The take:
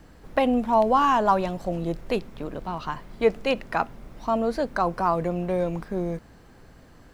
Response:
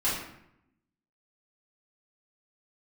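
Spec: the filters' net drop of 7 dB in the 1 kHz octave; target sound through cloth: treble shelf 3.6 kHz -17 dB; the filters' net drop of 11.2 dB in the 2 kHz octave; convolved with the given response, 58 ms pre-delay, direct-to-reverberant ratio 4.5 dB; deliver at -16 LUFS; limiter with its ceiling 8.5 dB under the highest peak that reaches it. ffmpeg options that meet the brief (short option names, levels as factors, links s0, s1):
-filter_complex "[0:a]equalizer=f=1000:t=o:g=-5.5,equalizer=f=2000:t=o:g=-8.5,alimiter=limit=0.112:level=0:latency=1,asplit=2[s0][s1];[1:a]atrim=start_sample=2205,adelay=58[s2];[s1][s2]afir=irnorm=-1:irlink=0,volume=0.188[s3];[s0][s3]amix=inputs=2:normalize=0,highshelf=f=3600:g=-17,volume=4.73"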